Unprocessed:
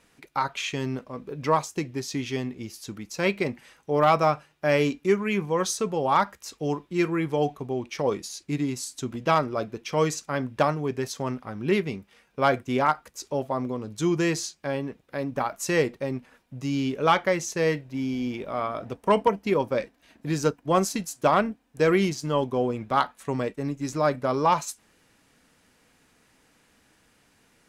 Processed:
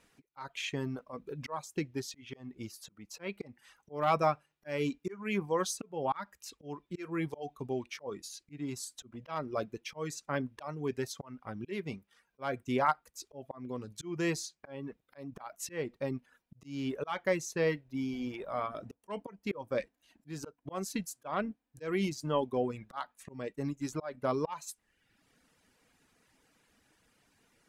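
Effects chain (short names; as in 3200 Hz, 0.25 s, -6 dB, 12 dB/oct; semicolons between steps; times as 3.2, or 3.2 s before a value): auto swell 0.283 s; dynamic EQ 5900 Hz, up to -3 dB, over -47 dBFS, Q 1.3; reverb removal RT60 0.9 s; gain -5 dB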